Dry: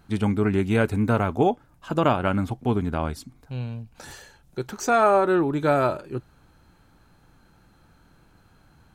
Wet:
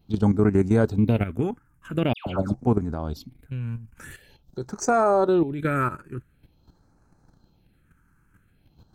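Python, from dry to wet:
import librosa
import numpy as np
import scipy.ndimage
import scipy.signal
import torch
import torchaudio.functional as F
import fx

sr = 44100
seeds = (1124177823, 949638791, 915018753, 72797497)

y = fx.level_steps(x, sr, step_db=11)
y = fx.phaser_stages(y, sr, stages=4, low_hz=620.0, high_hz=3200.0, hz=0.46, feedback_pct=25)
y = fx.dispersion(y, sr, late='lows', ms=136.0, hz=1700.0, at=(2.13, 2.54))
y = F.gain(torch.from_numpy(y), 4.0).numpy()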